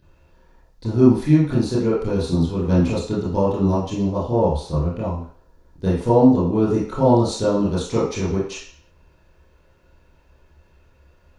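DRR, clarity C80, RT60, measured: −10.5 dB, 7.0 dB, 0.50 s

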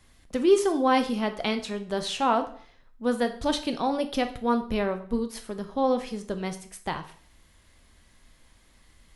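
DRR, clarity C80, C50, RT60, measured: 7.0 dB, 16.5 dB, 12.5 dB, 0.50 s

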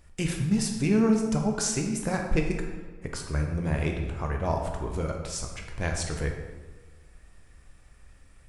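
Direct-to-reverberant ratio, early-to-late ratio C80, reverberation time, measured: 2.0 dB, 7.0 dB, 1.3 s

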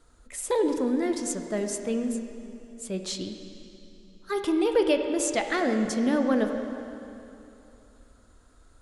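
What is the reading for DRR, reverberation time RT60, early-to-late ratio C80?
5.0 dB, 2.9 s, 6.5 dB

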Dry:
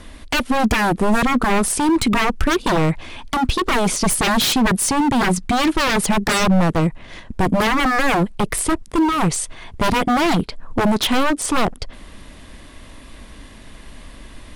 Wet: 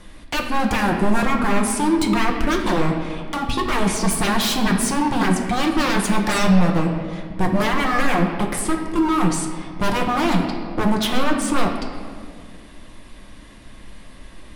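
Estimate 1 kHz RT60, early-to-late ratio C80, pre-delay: 1.8 s, 6.5 dB, 5 ms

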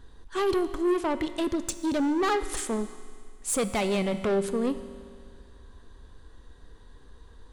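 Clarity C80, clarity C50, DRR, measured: 13.0 dB, 12.0 dB, 11.0 dB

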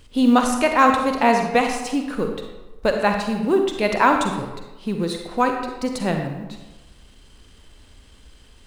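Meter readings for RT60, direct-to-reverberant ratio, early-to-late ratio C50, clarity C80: 1.1 s, 3.5 dB, 4.5 dB, 6.5 dB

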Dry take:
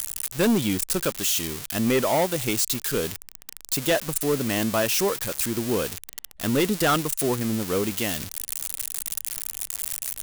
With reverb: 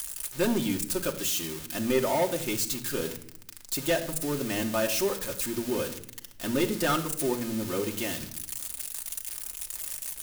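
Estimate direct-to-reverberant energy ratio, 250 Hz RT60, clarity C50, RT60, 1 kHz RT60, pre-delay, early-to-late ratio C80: 1.5 dB, 1.2 s, 12.5 dB, 0.70 s, 0.60 s, 3 ms, 15.0 dB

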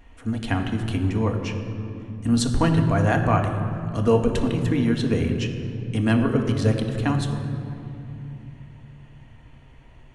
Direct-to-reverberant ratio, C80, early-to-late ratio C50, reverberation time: 2.5 dB, 7.0 dB, 6.0 dB, 2.9 s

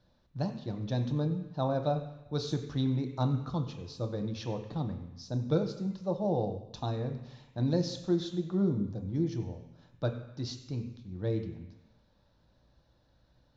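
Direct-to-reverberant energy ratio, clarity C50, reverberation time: 5.0 dB, 10.0 dB, 1.0 s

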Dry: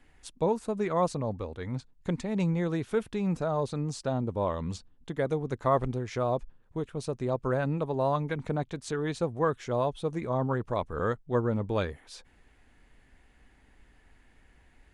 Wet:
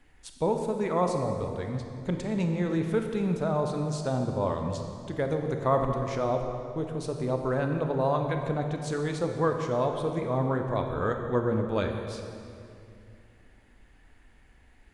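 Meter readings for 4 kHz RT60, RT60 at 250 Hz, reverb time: 1.9 s, 3.2 s, 2.5 s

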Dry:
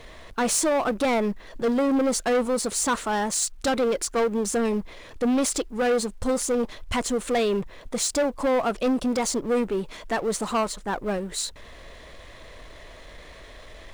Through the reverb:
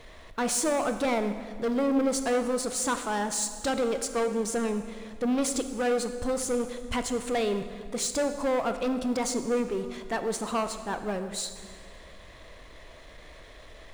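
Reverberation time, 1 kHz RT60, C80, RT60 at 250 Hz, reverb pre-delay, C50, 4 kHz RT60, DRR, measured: 1.9 s, 1.8 s, 10.5 dB, 2.3 s, 23 ms, 9.5 dB, 1.5 s, 8.5 dB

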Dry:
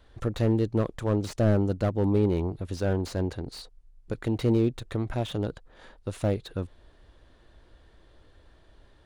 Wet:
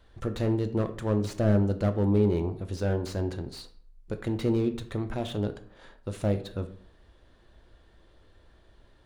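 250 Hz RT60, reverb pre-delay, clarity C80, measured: 0.60 s, 5 ms, 17.0 dB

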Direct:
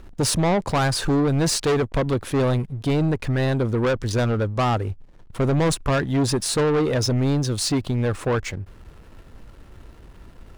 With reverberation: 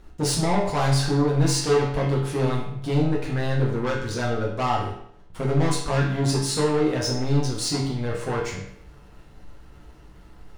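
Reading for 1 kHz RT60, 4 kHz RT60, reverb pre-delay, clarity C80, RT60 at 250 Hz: 0.70 s, 0.60 s, 7 ms, 7.0 dB, 0.70 s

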